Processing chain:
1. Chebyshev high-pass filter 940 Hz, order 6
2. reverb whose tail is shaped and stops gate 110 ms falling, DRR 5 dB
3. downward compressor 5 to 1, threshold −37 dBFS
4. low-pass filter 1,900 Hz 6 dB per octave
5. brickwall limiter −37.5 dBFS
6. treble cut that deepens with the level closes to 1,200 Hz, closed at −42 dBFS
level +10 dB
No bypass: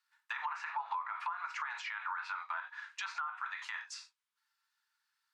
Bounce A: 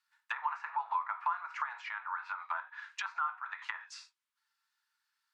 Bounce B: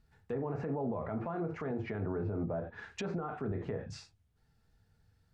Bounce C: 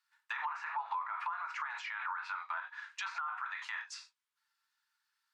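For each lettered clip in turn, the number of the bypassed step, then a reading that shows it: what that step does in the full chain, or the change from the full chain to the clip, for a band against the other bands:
5, average gain reduction 2.0 dB
1, 500 Hz band +36.5 dB
3, 8 kHz band −2.0 dB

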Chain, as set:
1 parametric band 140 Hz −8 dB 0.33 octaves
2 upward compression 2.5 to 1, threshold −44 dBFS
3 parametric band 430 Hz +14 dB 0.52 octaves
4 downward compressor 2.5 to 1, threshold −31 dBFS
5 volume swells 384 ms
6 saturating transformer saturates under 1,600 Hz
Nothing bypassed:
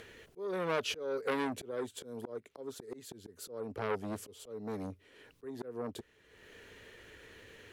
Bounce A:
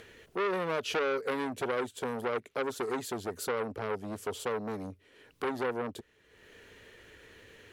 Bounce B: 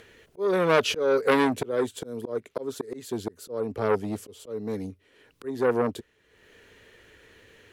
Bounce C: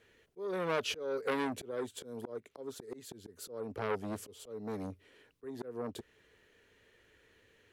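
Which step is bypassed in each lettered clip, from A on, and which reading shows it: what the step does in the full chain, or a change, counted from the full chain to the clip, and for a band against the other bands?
5, change in crest factor −4.5 dB
4, average gain reduction 9.0 dB
2, change in momentary loudness spread −5 LU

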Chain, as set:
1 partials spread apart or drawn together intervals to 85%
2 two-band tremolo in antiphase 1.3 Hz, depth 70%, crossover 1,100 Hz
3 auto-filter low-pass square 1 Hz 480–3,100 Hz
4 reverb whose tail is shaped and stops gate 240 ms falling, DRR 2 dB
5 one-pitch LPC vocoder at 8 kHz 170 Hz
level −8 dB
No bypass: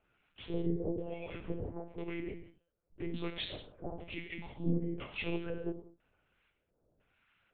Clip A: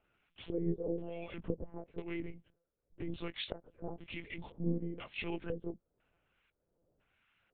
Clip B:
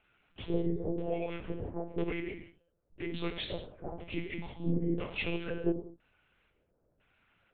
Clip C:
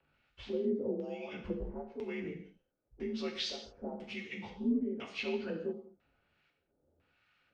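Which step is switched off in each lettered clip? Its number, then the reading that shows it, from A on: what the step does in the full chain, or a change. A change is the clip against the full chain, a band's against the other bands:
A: 4, change in crest factor +3.0 dB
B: 2, change in crest factor −2.5 dB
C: 5, change in crest factor −3.5 dB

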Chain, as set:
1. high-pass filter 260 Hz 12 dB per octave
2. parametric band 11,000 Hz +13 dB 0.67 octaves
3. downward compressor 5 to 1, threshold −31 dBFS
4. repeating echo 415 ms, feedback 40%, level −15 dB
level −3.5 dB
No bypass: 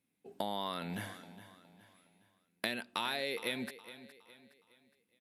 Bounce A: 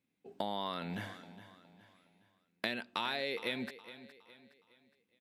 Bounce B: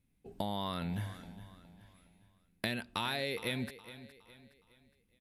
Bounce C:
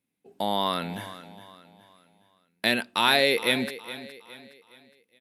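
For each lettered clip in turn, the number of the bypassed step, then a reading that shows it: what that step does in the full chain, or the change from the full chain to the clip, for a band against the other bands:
2, 8 kHz band −9.5 dB
1, 125 Hz band +9.0 dB
3, average gain reduction 9.5 dB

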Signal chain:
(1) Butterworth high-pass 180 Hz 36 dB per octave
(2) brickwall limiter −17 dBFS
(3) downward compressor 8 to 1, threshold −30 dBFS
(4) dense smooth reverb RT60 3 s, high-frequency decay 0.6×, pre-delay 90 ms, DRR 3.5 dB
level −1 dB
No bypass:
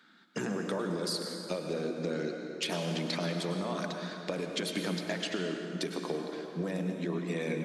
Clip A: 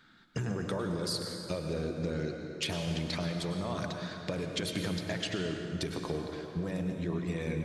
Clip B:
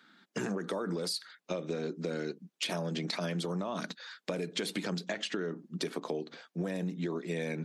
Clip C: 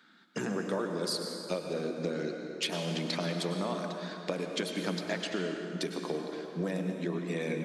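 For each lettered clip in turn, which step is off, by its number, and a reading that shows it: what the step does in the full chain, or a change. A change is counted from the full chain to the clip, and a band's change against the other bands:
1, 125 Hz band +4.5 dB
4, change in crest factor +2.0 dB
2, average gain reduction 2.0 dB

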